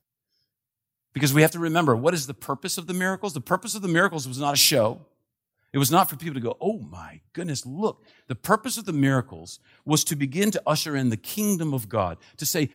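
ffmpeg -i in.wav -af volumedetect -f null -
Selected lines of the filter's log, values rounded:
mean_volume: -25.2 dB
max_volume: -3.0 dB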